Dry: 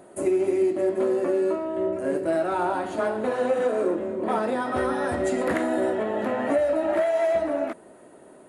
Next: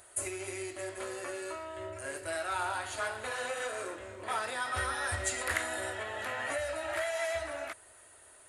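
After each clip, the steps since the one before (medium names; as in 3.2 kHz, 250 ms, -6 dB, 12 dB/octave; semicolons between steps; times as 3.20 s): FFT filter 100 Hz 0 dB, 170 Hz -29 dB, 980 Hz -8 dB, 1.5 kHz -1 dB, 7.2 kHz +7 dB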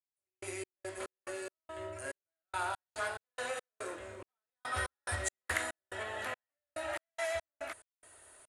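trance gate "..x.x.x.xx" 71 bpm -60 dB; trim -1.5 dB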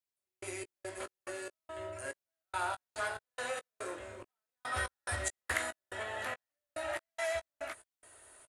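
doubling 17 ms -12 dB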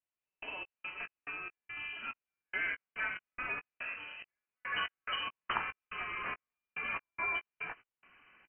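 frequency inversion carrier 3 kHz; vibrato 0.59 Hz 14 cents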